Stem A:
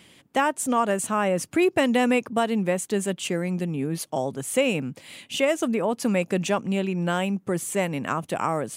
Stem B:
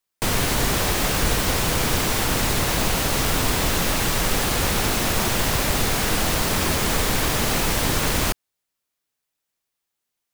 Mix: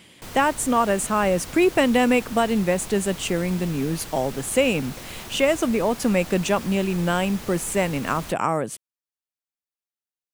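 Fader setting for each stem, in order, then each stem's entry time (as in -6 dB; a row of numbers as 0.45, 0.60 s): +2.5, -16.5 dB; 0.00, 0.00 s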